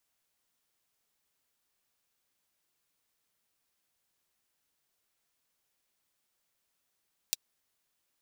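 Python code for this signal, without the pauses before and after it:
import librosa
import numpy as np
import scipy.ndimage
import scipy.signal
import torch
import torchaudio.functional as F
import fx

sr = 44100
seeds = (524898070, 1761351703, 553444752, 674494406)

y = fx.drum_hat(sr, length_s=0.24, from_hz=3800.0, decay_s=0.03)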